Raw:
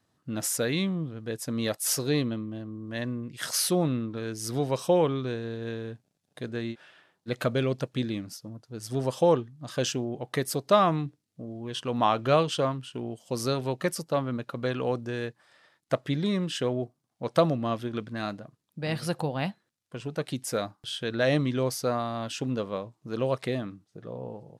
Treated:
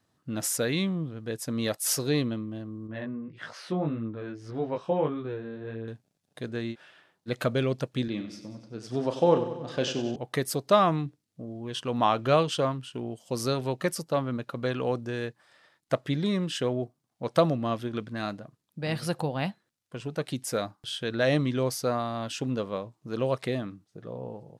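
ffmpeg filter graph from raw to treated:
-filter_complex "[0:a]asettb=1/sr,asplit=3[a][b][c];[a]atrim=end=2.874[d];[b]atrim=start=2.87:end=5.88,asetpts=PTS-STARTPTS,afade=t=in:d=0.004:c=qsin,afade=t=out:st=3.006:d=0.004:c=qsin,lowpass=2.2k,flanger=delay=18:depth=3.3:speed=1.7[e];[c]atrim=start=5.876[f];[d][e]acrossfade=d=0.004:c1=hsin:c2=qsin[g];[g][f]acrossfade=d=0.004:c1=qsin:c2=hsin,asettb=1/sr,asplit=3[h][i][j];[h]atrim=end=8.084[k];[i]atrim=start=8.08:end=10.16,asetpts=PTS-STARTPTS,afade=t=in:d=0.004:c=qsin,afade=t=out:st=2.076:d=0.004:c=qsin,highpass=130,lowpass=4.5k,asplit=2[l][m];[m]adelay=34,volume=-9.5dB[n];[l][n]amix=inputs=2:normalize=0,atrim=end_sample=91728,aecho=1:1:94|188|282|376|470|564|658:0.282|0.166|0.0981|0.0579|0.0342|0.0201|0.0119,atrim=end_sample=91728[o];[j]atrim=start=10.156[p];[k][o]acrossfade=d=0.004:c1=hsin:c2=qsin[q];[q][p]acrossfade=d=0.004:c1=qsin:c2=hsin"

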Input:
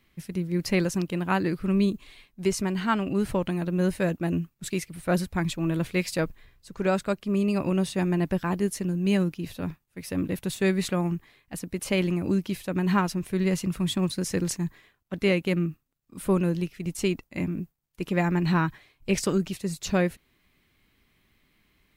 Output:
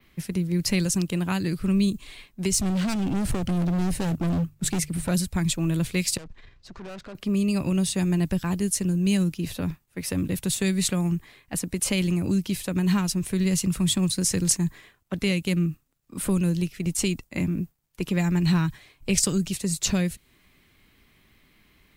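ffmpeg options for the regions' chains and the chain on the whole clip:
-filter_complex "[0:a]asettb=1/sr,asplit=3[a][b][c];[a]atrim=end=2.534[d];[b]atrim=start=2.53:end=5.09,asetpts=PTS-STARTPTS,afade=t=in:d=0.004:c=qsin,afade=t=out:st=2.556:d=0.004:c=qsin,lowshelf=f=450:g=7.5,bandreject=f=50:t=h:w=6,bandreject=f=100:t=h:w=6,bandreject=f=150:t=h:w=6,asoftclip=type=hard:threshold=-26dB[e];[c]atrim=start=5.086[f];[d][e]acrossfade=d=0.004:c1=hsin:c2=qsin[g];[g][f]acrossfade=d=0.004:c1=qsin:c2=hsin,asettb=1/sr,asplit=3[h][i][j];[h]atrim=end=6.174[k];[i]atrim=start=6.17:end=7.15,asetpts=PTS-STARTPTS,afade=t=in:d=0.004:c=qsin,afade=t=out:st=0.976:d=0.004:c=qsin,lowpass=f=5.7k:w=0.5412,lowpass=f=5.7k:w=1.3066,acompressor=threshold=-37dB:ratio=2.5:attack=3.2:release=140:knee=1:detection=peak,aeval=exprs='(tanh(141*val(0)+0.5)-tanh(0.5))/141':c=same[l];[j]atrim=start=7.146[m];[k][l]acrossfade=d=0.004:c1=hsin:c2=qsin[n];[n][m]acrossfade=d=0.004:c1=qsin:c2=hsin,adynamicequalizer=threshold=0.00251:dfrequency=8200:dqfactor=1.4:tfrequency=8200:tqfactor=1.4:attack=5:release=100:ratio=0.375:range=3:mode=boostabove:tftype=bell,acrossover=split=180|3000[o][p][q];[p]acompressor=threshold=-36dB:ratio=6[r];[o][r][q]amix=inputs=3:normalize=0,volume=6.5dB"

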